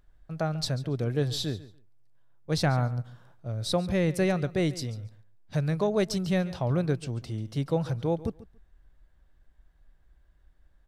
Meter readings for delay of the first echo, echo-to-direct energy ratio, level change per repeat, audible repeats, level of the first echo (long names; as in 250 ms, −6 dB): 141 ms, −17.5 dB, −15.5 dB, 2, −17.5 dB